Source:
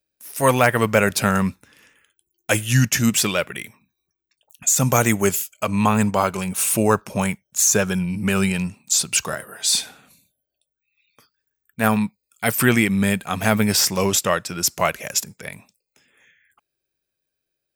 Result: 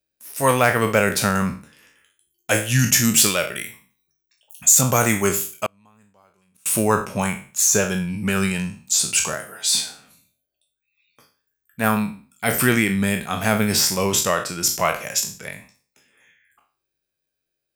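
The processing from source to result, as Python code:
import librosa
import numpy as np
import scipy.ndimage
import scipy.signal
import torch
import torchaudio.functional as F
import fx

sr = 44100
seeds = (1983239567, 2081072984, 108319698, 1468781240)

y = fx.spec_trails(x, sr, decay_s=0.4)
y = fx.high_shelf(y, sr, hz=5400.0, db=7.5, at=(2.79, 4.81))
y = fx.gate_flip(y, sr, shuts_db=-16.0, range_db=-36, at=(5.66, 6.66))
y = y * librosa.db_to_amplitude(-2.0)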